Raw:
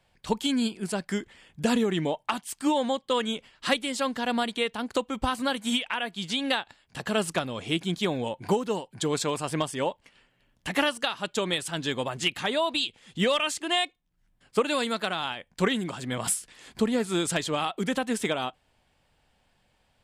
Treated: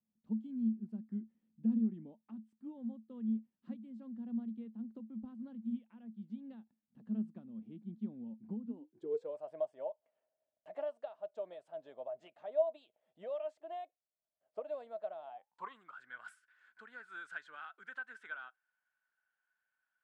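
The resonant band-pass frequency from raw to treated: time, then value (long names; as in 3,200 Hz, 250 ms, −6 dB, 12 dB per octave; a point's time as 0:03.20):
resonant band-pass, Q 18
0:08.63 220 Hz
0:09.41 630 Hz
0:15.22 630 Hz
0:16.00 1,500 Hz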